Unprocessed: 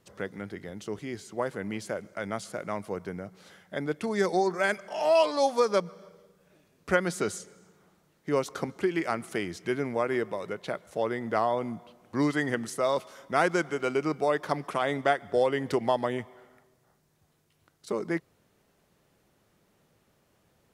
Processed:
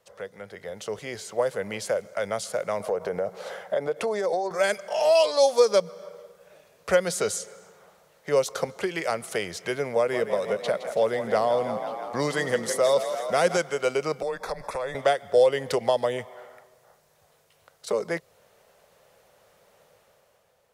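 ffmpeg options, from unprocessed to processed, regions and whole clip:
-filter_complex "[0:a]asettb=1/sr,asplit=3[a][b][c];[a]atrim=end=2.804[d];[b]atrim=start=2.8:end=4.51,asetpts=PTS-STARTPTS,afade=t=in:d=0.004:c=qsin,afade=t=out:st=1.706:d=0.004:c=qsin,equalizer=f=600:w=0.46:g=11,acompressor=threshold=-28dB:ratio=6:attack=3.2:release=140:knee=1:detection=peak[e];[c]atrim=start=4.506[f];[d][e]acrossfade=d=0.004:c1=hsin:c2=qsin[g];[g][f]acrossfade=d=0.004:c1=qsin:c2=hsin,asettb=1/sr,asplit=3[h][i][j];[h]atrim=end=9.964[k];[i]atrim=start=9.96:end=13.57,asetpts=PTS-STARTPTS,afade=t=in:d=0.004:c=qsin,afade=t=out:st=3.606:d=0.004:c=qsin,equalizer=f=200:w=4.3:g=8.5,asplit=9[l][m][n][o][p][q][r][s][t];[m]adelay=165,afreqshift=33,volume=-11dB[u];[n]adelay=330,afreqshift=66,volume=-14.7dB[v];[o]adelay=495,afreqshift=99,volume=-18.5dB[w];[p]adelay=660,afreqshift=132,volume=-22.2dB[x];[q]adelay=825,afreqshift=165,volume=-26dB[y];[r]adelay=990,afreqshift=198,volume=-29.7dB[z];[s]adelay=1155,afreqshift=231,volume=-33.5dB[aa];[t]adelay=1320,afreqshift=264,volume=-37.2dB[ab];[l][u][v][w][x][y][z][aa][ab]amix=inputs=9:normalize=0,atrim=end_sample=159201[ac];[j]atrim=start=13.566[ad];[k][ac]acrossfade=d=0.004:c1=hsin:c2=qsin[ae];[ae][ad]acrossfade=d=0.004:c1=qsin:c2=hsin,asettb=1/sr,asplit=3[af][ag][ah];[af]atrim=end=14.224[ai];[ag]atrim=start=14.22:end=14.95,asetpts=PTS-STARTPTS,afade=t=in:d=0.004:c=qsin,afade=t=out:st=0.726:d=0.004:c=qsin,acompressor=threshold=-35dB:ratio=3:attack=3.2:release=140:knee=1:detection=peak,afreqshift=-130,asuperstop=centerf=3000:order=12:qfactor=5.2[aj];[ah]atrim=start=14.946[ak];[ai][aj]acrossfade=d=0.004:c1=hsin:c2=qsin[al];[al][ak]acrossfade=d=0.004:c1=qsin:c2=hsin,acrossover=split=390|3000[am][an][ao];[an]acompressor=threshold=-45dB:ratio=2[ap];[am][ap][ao]amix=inputs=3:normalize=0,lowshelf=f=400:t=q:w=3:g=-8.5,dynaudnorm=f=130:g=11:m=8.5dB"

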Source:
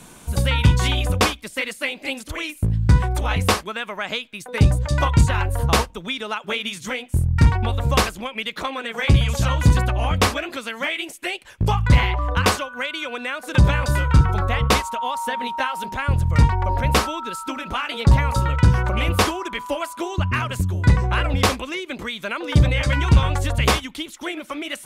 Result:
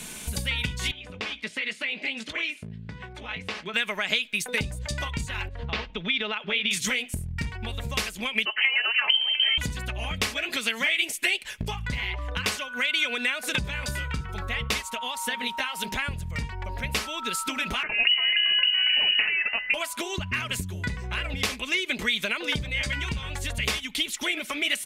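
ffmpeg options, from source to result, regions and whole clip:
-filter_complex "[0:a]asettb=1/sr,asplit=3[a][b][c];[a]atrim=end=0.914[d];[b]atrim=start=0.91:end=3.74,asetpts=PTS-STARTPTS,afade=t=in:d=0.004:c=qsin,afade=t=out:st=2.826:d=0.004:c=qsin,acompressor=threshold=-31dB:ratio=16:attack=3.2:release=140:knee=1:detection=peak,highpass=120,lowpass=3.5k,asplit=2[e][f];[f]adelay=18,volume=-13dB[g];[e][g]amix=inputs=2:normalize=0,atrim=end_sample=124803[h];[c]atrim=start=3.736[i];[d][h]acrossfade=d=0.004:c1=hsin:c2=qsin[j];[j][i]acrossfade=d=0.004:c1=qsin:c2=hsin,asettb=1/sr,asplit=3[k][l][m];[k]atrim=end=5.484[n];[l]atrim=start=5.48:end=6.71,asetpts=PTS-STARTPTS,afade=t=in:d=0.004:c=qsin,afade=t=out:st=1.226:d=0.004:c=qsin,lowpass=f=3.9k:w=0.5412,lowpass=f=3.9k:w=1.3066,acompressor=threshold=-29dB:ratio=3:attack=3.2:release=140:knee=1:detection=peak[o];[m]atrim=start=6.706[p];[n][o]acrossfade=d=0.004:c1=hsin:c2=qsin[q];[q][p]acrossfade=d=0.004:c1=qsin:c2=hsin,asettb=1/sr,asplit=3[r][s][t];[r]atrim=end=8.454[u];[s]atrim=start=8.45:end=9.58,asetpts=PTS-STARTPTS,afade=t=in:d=0.004:c=qsin,afade=t=out:st=1.126:d=0.004:c=qsin,lowpass=f=2.7k:t=q:w=0.5098,lowpass=f=2.7k:t=q:w=0.6013,lowpass=f=2.7k:t=q:w=0.9,lowpass=f=2.7k:t=q:w=2.563,afreqshift=-3200,highpass=320[v];[t]atrim=start=9.576[w];[u][v]acrossfade=d=0.004:c1=hsin:c2=qsin[x];[x][w]acrossfade=d=0.004:c1=qsin:c2=hsin,asettb=1/sr,asplit=3[y][z][aa];[y]atrim=end=17.834[ab];[z]atrim=start=17.83:end=19.74,asetpts=PTS-STARTPTS,afade=t=in:d=0.004:c=qsin,afade=t=out:st=1.906:d=0.004:c=qsin,acompressor=threshold=-21dB:ratio=3:attack=3.2:release=140:knee=1:detection=peak,aeval=exprs='sgn(val(0))*max(abs(val(0))-0.01,0)':c=same,lowpass=f=2.6k:t=q:w=0.5098,lowpass=f=2.6k:t=q:w=0.6013,lowpass=f=2.6k:t=q:w=0.9,lowpass=f=2.6k:t=q:w=2.563,afreqshift=-3000[ac];[aa]atrim=start=19.736[ad];[ab][ac]acrossfade=d=0.004:c1=hsin:c2=qsin[ae];[ae][ad]acrossfade=d=0.004:c1=qsin:c2=hsin,acompressor=threshold=-28dB:ratio=12,highshelf=f=1.6k:t=q:w=1.5:g=7.5,aecho=1:1:4.7:0.34"

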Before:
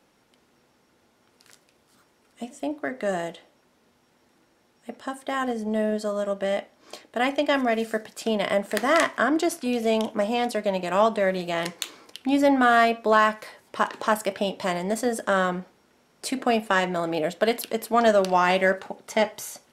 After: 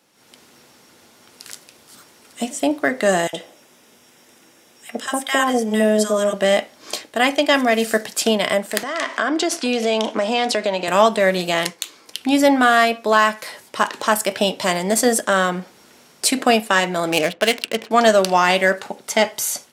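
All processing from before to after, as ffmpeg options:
-filter_complex "[0:a]asettb=1/sr,asplit=3[a][b][c];[a]atrim=end=3.274[d];[b]atrim=start=3.27:end=6.34,asetpts=PTS-STARTPTS,afade=t=in:d=0.004:c=qsin,afade=t=out:st=3.066:d=0.004:c=qsin,lowshelf=f=170:g=-6,bandreject=f=4.3k:w=5.7,acrossover=split=1100[e][f];[e]adelay=60[g];[g][f]amix=inputs=2:normalize=0,atrim=end_sample=135387[h];[c]atrim=start=6.336[i];[d][h]acrossfade=d=0.004:c1=hsin:c2=qsin[j];[j][i]acrossfade=d=0.004:c1=qsin:c2=hsin,asettb=1/sr,asplit=3[k][l][m];[k]atrim=end=8.834[n];[l]atrim=start=8.83:end=10.88,asetpts=PTS-STARTPTS,afade=t=in:d=0.004:c=qsin,afade=t=out:st=2.046:d=0.004:c=qsin,highpass=240,lowpass=6k,acompressor=threshold=-28dB:ratio=3:attack=3.2:release=140:knee=1:detection=peak[o];[m]atrim=start=10.876[p];[n][o]acrossfade=d=0.004:c1=hsin:c2=qsin[q];[q][p]acrossfade=d=0.004:c1=qsin:c2=hsin,asettb=1/sr,asplit=3[r][s][t];[r]atrim=end=17.124[u];[s]atrim=start=17.12:end=17.91,asetpts=PTS-STARTPTS,afade=t=in:d=0.004:c=qsin,afade=t=out:st=0.786:d=0.004:c=qsin,lowpass=6.5k,equalizer=f=2.6k:w=2:g=9,adynamicsmooth=sensitivity=7:basefreq=870[v];[t]atrim=start=17.906[w];[u][v]acrossfade=d=0.004:c1=hsin:c2=qsin[x];[x][w]acrossfade=d=0.004:c1=qsin:c2=hsin,highpass=81,highshelf=f=2.7k:g=9.5,dynaudnorm=f=140:g=3:m=11.5dB,volume=-1dB"

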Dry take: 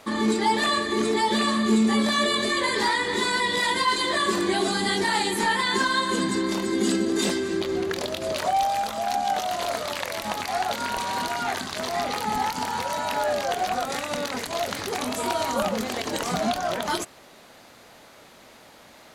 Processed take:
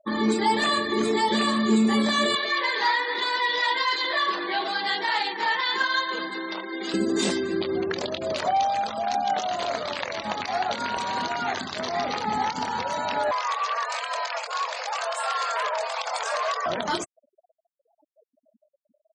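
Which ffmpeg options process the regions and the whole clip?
-filter_complex "[0:a]asettb=1/sr,asplit=3[a][b][c];[a]atrim=end=2.354[d];[b]atrim=start=2.35:end=6.94,asetpts=PTS-STARTPTS,afade=t=in:d=0.004:c=qsin,afade=t=out:st=4.586:d=0.004:c=qsin,adynamicsmooth=sensitivity=7:basefreq=1.4k,highpass=610,lowpass=6k,aecho=1:1:6.3:0.41,atrim=end_sample=202419[e];[c]atrim=start=6.936[f];[d][e]acrossfade=d=0.004:c1=hsin:c2=qsin[g];[g][f]acrossfade=d=0.004:c1=qsin:c2=hsin,asettb=1/sr,asplit=3[h][i][j];[h]atrim=end=13.314[k];[i]atrim=start=13.31:end=16.66,asetpts=PTS-STARTPTS,afade=t=in:d=0.004:c=qsin,afade=t=out:st=3.346:d=0.004:c=qsin,lowshelf=f=61:g=9.5,aeval=exprs='0.0944*(abs(mod(val(0)/0.0944+3,4)-2)-1)':c=same,afreqshift=420[l];[j]atrim=start=16.656[m];[k][l]acrossfade=d=0.004:c1=hsin:c2=qsin[n];[n][m]acrossfade=d=0.004:c1=qsin:c2=hsin,lowpass=f=9.6k:w=0.5412,lowpass=f=9.6k:w=1.3066,afftfilt=real='re*gte(hypot(re,im),0.0178)':imag='im*gte(hypot(re,im),0.0178)':win_size=1024:overlap=0.75,highpass=84"

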